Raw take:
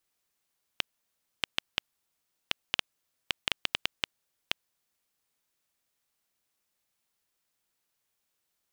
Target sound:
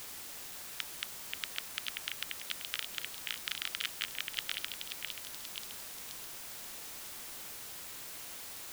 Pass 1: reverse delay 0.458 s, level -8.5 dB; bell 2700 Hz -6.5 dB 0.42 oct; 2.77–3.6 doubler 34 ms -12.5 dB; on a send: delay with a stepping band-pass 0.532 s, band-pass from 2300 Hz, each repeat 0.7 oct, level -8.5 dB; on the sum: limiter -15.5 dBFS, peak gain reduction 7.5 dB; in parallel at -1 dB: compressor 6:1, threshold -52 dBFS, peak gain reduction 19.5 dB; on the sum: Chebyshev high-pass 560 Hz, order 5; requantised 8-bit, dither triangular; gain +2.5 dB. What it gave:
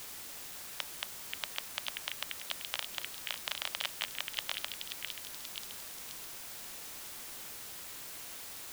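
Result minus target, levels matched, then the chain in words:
1000 Hz band +3.0 dB
reverse delay 0.458 s, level -8.5 dB; bell 2700 Hz -6.5 dB 0.42 oct; 2.77–3.6 doubler 34 ms -12.5 dB; on a send: delay with a stepping band-pass 0.532 s, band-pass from 2300 Hz, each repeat 0.7 oct, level -8.5 dB; on the sum: limiter -15.5 dBFS, peak gain reduction 7.5 dB; in parallel at -1 dB: compressor 6:1, threshold -52 dBFS, peak gain reduction 19.5 dB; on the sum: Chebyshev high-pass 1300 Hz, order 5; requantised 8-bit, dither triangular; gain +2.5 dB

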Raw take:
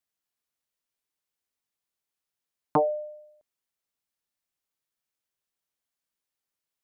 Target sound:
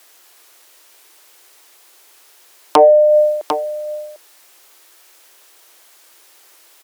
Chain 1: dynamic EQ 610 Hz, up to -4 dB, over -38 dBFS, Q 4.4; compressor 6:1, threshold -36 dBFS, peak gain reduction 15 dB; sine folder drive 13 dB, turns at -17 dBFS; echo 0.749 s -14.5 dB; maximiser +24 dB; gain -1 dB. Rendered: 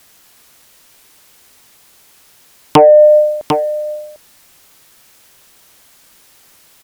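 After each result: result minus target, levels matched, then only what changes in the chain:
compressor: peak gain reduction -5.5 dB; 250 Hz band +5.5 dB
change: compressor 6:1, threshold -42.5 dBFS, peak gain reduction 20.5 dB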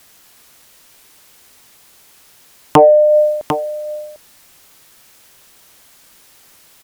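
250 Hz band +6.0 dB
add after dynamic EQ: elliptic high-pass 330 Hz, stop band 60 dB

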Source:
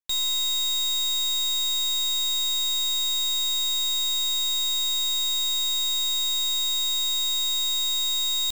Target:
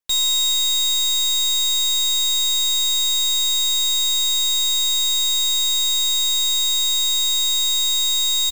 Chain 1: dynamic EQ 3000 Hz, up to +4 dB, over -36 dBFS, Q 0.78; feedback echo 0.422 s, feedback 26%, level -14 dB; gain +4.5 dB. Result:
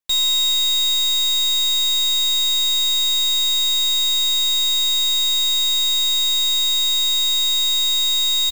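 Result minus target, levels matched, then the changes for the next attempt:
8000 Hz band -4.0 dB
change: dynamic EQ 7500 Hz, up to +4 dB, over -36 dBFS, Q 0.78

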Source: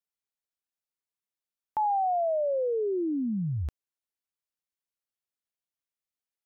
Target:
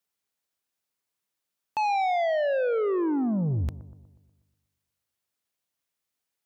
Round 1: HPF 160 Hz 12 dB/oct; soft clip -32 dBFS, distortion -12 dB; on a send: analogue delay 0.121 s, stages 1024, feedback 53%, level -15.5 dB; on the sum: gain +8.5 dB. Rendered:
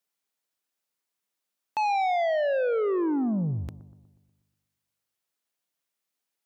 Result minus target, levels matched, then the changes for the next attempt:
125 Hz band -2.5 dB
change: HPF 62 Hz 12 dB/oct

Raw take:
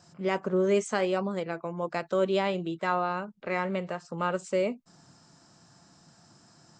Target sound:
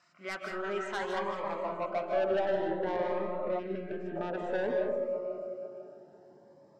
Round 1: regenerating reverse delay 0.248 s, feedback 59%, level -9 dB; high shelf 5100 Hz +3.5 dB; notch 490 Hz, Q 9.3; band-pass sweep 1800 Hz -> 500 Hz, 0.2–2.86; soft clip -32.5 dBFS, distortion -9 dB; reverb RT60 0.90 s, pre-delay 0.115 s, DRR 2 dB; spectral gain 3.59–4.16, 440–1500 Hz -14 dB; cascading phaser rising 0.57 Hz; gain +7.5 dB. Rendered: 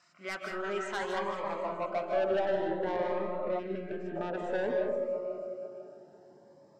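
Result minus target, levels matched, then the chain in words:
8000 Hz band +3.0 dB
regenerating reverse delay 0.248 s, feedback 59%, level -9 dB; high shelf 5100 Hz -3.5 dB; notch 490 Hz, Q 9.3; band-pass sweep 1800 Hz -> 500 Hz, 0.2–2.86; soft clip -32.5 dBFS, distortion -9 dB; reverb RT60 0.90 s, pre-delay 0.115 s, DRR 2 dB; spectral gain 3.59–4.16, 440–1500 Hz -14 dB; cascading phaser rising 0.57 Hz; gain +7.5 dB

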